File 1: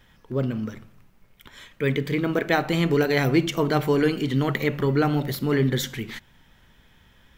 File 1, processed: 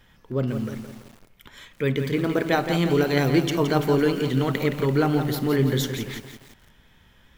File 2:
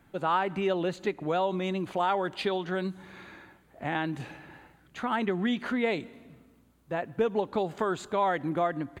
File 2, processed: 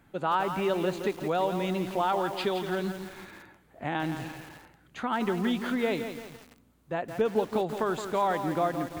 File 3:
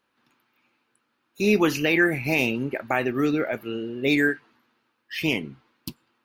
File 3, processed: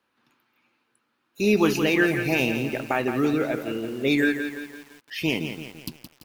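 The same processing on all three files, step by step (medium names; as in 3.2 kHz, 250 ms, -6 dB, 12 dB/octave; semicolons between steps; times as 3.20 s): wow and flutter 17 cents; dynamic bell 2 kHz, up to -4 dB, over -39 dBFS, Q 2.2; bit-crushed delay 169 ms, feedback 55%, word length 7-bit, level -8 dB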